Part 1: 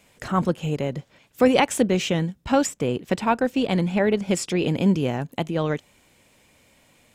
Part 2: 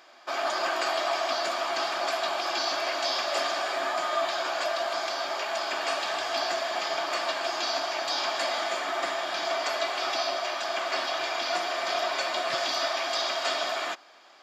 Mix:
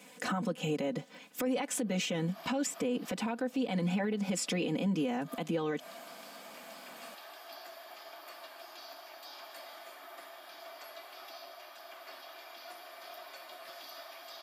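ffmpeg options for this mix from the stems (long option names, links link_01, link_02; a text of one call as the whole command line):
ffmpeg -i stem1.wav -i stem2.wav -filter_complex "[0:a]highpass=frequency=150:width=0.5412,highpass=frequency=150:width=1.3066,aecho=1:1:4:0.99,acompressor=threshold=-27dB:ratio=2,volume=1dB,asplit=2[link_01][link_02];[1:a]highpass=frequency=190:width=0.5412,highpass=frequency=190:width=1.3066,aexciter=amount=13.9:drive=5.6:freq=10000,adelay=1150,volume=-20dB[link_03];[link_02]apad=whole_len=687068[link_04];[link_03][link_04]sidechaincompress=threshold=-38dB:ratio=10:attack=25:release=112[link_05];[link_01][link_05]amix=inputs=2:normalize=0,alimiter=level_in=0.5dB:limit=-24dB:level=0:latency=1:release=110,volume=-0.5dB" out.wav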